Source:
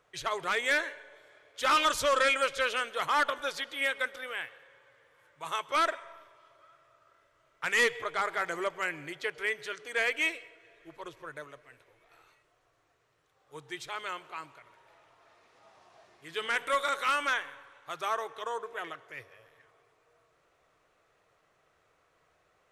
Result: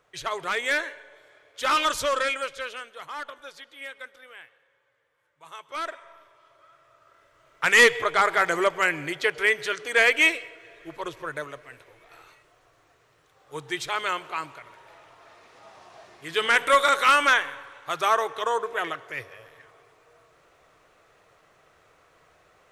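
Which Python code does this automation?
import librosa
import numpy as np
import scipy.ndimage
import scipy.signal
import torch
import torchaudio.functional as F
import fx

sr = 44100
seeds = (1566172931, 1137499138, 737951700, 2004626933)

y = fx.gain(x, sr, db=fx.line((2.0, 2.5), (3.02, -9.0), (5.54, -9.0), (6.07, -1.0), (7.66, 10.0)))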